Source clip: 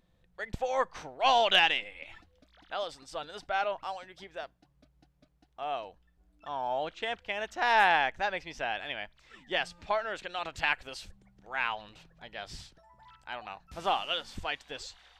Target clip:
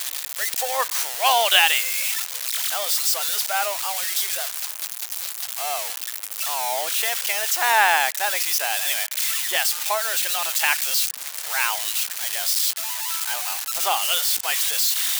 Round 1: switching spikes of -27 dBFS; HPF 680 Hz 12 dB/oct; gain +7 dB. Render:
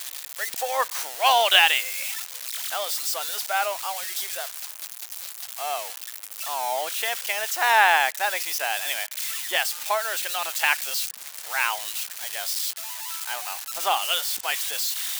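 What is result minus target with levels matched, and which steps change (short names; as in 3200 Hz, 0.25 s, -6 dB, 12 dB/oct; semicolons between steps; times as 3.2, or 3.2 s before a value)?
switching spikes: distortion -6 dB
change: switching spikes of -20.5 dBFS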